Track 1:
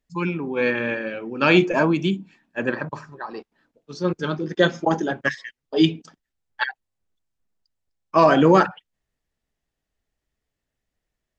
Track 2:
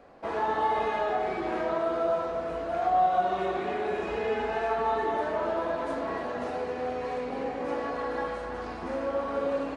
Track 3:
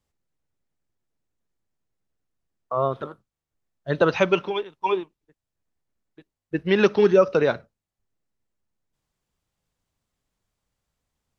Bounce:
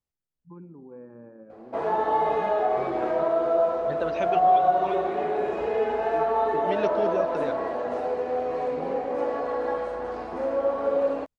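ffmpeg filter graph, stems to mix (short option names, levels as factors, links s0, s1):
-filter_complex "[0:a]lowpass=f=1100:w=0.5412,lowpass=f=1100:w=1.3066,lowshelf=f=490:g=7,acompressor=threshold=0.0447:ratio=2.5,adelay=350,volume=0.133[s0];[1:a]equalizer=f=570:t=o:w=1.9:g=10.5,adelay=1500,volume=0.596[s1];[2:a]volume=0.237[s2];[s0][s1][s2]amix=inputs=3:normalize=0"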